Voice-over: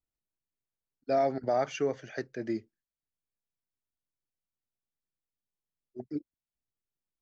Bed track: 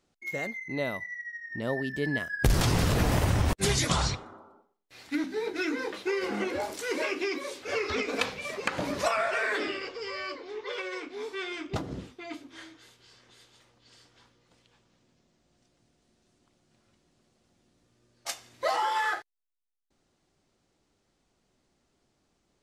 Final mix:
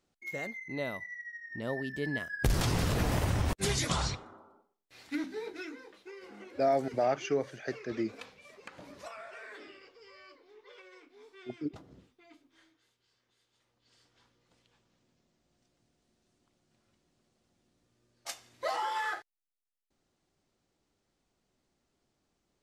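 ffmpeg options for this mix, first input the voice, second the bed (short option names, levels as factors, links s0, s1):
-filter_complex "[0:a]adelay=5500,volume=0.944[s0];[1:a]volume=2.66,afade=t=out:st=5.18:d=0.65:silence=0.199526,afade=t=in:st=13.44:d=1.07:silence=0.223872[s1];[s0][s1]amix=inputs=2:normalize=0"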